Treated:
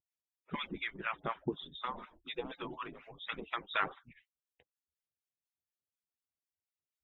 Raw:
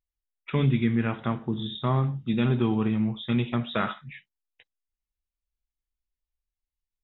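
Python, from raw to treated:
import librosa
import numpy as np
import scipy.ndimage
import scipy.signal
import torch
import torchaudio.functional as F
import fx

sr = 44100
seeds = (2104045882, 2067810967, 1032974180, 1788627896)

y = fx.hpss_only(x, sr, part='percussive')
y = fx.harmonic_tremolo(y, sr, hz=4.1, depth_pct=100, crossover_hz=860.0)
y = y * 10.0 ** (1.5 / 20.0)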